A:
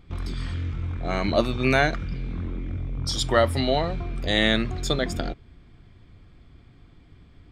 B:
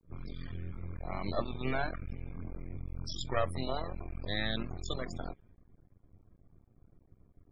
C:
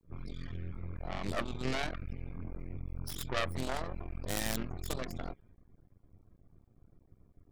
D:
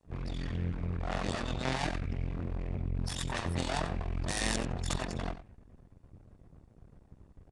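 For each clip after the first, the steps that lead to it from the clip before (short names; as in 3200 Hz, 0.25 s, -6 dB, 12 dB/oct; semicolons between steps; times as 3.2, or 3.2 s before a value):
half-wave rectifier; loudest bins only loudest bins 64; low-pass opened by the level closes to 830 Hz, open at -24.5 dBFS; gain -7.5 dB
self-modulated delay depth 0.81 ms
minimum comb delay 1.1 ms; echo 92 ms -13.5 dB; downsampling 22050 Hz; gain +8.5 dB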